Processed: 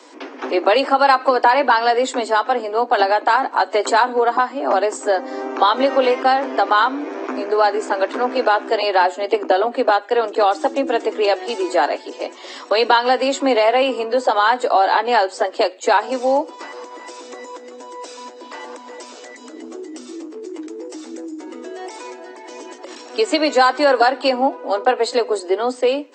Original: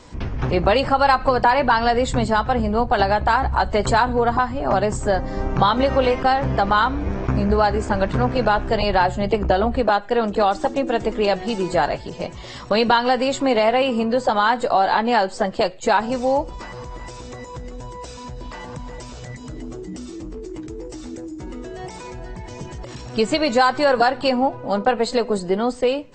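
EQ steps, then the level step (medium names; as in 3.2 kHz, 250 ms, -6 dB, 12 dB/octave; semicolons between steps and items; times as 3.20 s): steep high-pass 260 Hz 96 dB/octave; +2.5 dB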